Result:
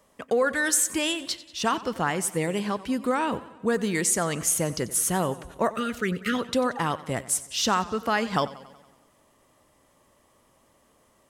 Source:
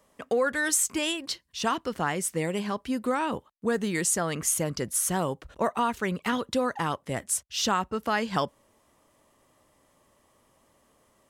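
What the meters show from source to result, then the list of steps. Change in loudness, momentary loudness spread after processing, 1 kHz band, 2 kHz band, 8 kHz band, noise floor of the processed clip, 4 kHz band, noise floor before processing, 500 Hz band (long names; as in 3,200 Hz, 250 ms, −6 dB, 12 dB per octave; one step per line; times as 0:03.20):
+2.0 dB, 6 LU, +1.5 dB, +2.0 dB, +2.0 dB, −63 dBFS, +2.0 dB, −66 dBFS, +2.0 dB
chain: time-frequency box erased 0:05.71–0:06.35, 550–1,200 Hz
feedback echo with a swinging delay time 93 ms, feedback 59%, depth 78 cents, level −17.5 dB
level +2 dB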